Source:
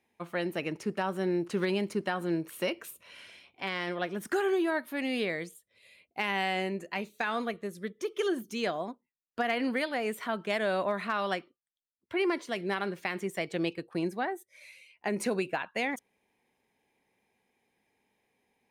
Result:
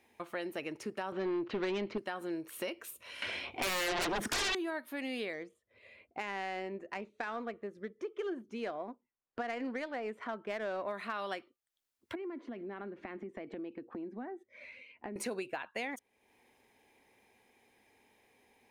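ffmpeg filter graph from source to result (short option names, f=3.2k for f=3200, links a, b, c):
-filter_complex "[0:a]asettb=1/sr,asplit=3[a][b][c];[a]atrim=end=1.124[d];[b]atrim=start=1.12:end=1.98,asetpts=PTS-STARTPTS,afade=t=in:d=0.004:c=qsin,afade=t=out:st=0.856:d=0.004:c=qsin,lowpass=f=3.8k:w=0.5412,lowpass=f=3.8k:w=1.3066,aeval=exprs='0.112*sin(PI/2*1.58*val(0)/0.112)':c=same[e];[c]atrim=start=1.976[f];[d][e]acrossfade=d=0.004:c1=hsin:c2=qsin[g];[g][f]acrossfade=d=0.004:c1=qsin:c2=hsin,asettb=1/sr,asplit=3[h][i][j];[h]atrim=end=3.224[k];[i]atrim=start=3.22:end=4.55,asetpts=PTS-STARTPTS,afade=t=in:d=0.004:c=qsin,afade=t=out:st=1.326:d=0.004:c=qsin,aemphasis=mode=reproduction:type=75kf,aeval=exprs='0.1*sin(PI/2*8.91*val(0)/0.1)':c=same[l];[j]atrim=start=4.546[m];[k][l]acrossfade=d=0.004:c1=hsin:c2=qsin[n];[n][m]acrossfade=d=0.004:c1=qsin:c2=hsin,asettb=1/sr,asplit=3[o][p][q];[o]atrim=end=5.334[r];[p]atrim=start=5.33:end=10.88,asetpts=PTS-STARTPTS,afade=t=in:d=0.004:c=qsin,afade=t=out:st=5.546:d=0.004:c=qsin,equalizer=f=3.7k:w=1.2:g=-5.5,adynamicsmooth=sensitivity=3.5:basefreq=2.5k[s];[q]atrim=start=10.876[t];[r][s]acrossfade=d=0.004:c1=hsin:c2=qsin[u];[u][t]acrossfade=d=0.004:c1=qsin:c2=hsin,asettb=1/sr,asplit=3[v][w][x];[v]atrim=end=12.154[y];[w]atrim=start=12.15:end=15.16,asetpts=PTS-STARTPTS,afade=t=in:d=0.004:c=qsin,afade=t=out:st=3.006:d=0.004:c=qsin,lowpass=1.8k,equalizer=f=250:w=1.6:g=14.5,acompressor=threshold=-41dB:ratio=3:attack=3.2:release=140:knee=1:detection=peak[z];[x]atrim=start=15.156[aa];[y][z]acrossfade=d=0.004:c1=hsin:c2=qsin[ab];[ab][aa]acrossfade=d=0.004:c1=qsin:c2=hsin,equalizer=f=170:w=3.8:g=-12,acompressor=threshold=-56dB:ratio=2,volume=8dB"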